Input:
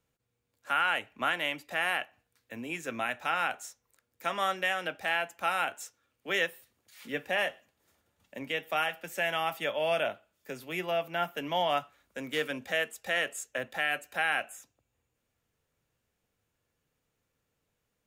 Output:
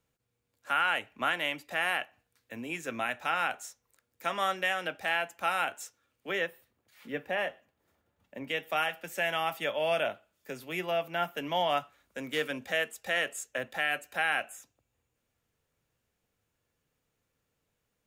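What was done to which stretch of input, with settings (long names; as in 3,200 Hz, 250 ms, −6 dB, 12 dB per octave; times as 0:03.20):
0:06.31–0:08.48: parametric band 8,100 Hz −10 dB 2.8 octaves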